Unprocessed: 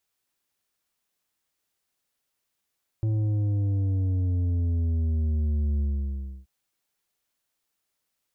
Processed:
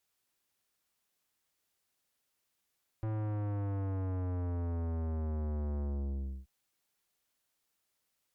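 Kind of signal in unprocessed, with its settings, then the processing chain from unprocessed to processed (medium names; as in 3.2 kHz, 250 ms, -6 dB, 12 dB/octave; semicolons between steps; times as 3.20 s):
sub drop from 110 Hz, over 3.43 s, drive 7.5 dB, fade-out 0.66 s, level -23 dB
valve stage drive 34 dB, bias 0.35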